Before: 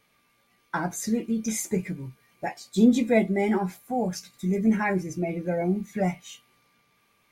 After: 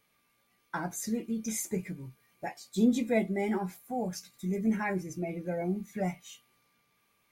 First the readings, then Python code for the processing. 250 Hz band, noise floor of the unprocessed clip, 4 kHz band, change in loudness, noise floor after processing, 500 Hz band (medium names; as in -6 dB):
-6.5 dB, -67 dBFS, -5.5 dB, -6.5 dB, -73 dBFS, -6.5 dB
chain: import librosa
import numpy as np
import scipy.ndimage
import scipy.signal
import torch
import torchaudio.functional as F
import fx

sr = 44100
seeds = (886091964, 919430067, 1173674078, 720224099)

y = fx.high_shelf(x, sr, hz=10000.0, db=7.5)
y = F.gain(torch.from_numpy(y), -6.5).numpy()